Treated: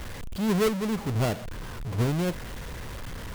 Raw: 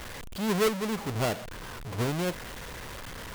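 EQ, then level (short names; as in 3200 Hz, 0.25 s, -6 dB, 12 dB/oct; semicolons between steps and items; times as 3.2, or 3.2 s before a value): low shelf 270 Hz +9 dB; -1.5 dB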